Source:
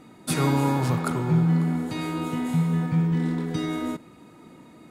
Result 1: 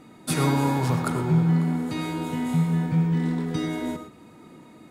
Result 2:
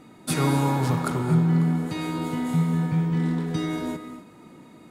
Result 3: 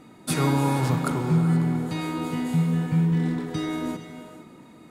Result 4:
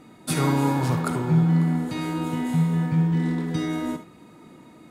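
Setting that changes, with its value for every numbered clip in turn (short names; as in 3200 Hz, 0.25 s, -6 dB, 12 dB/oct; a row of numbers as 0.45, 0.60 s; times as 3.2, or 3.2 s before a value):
non-linear reverb, gate: 140, 280, 500, 90 ms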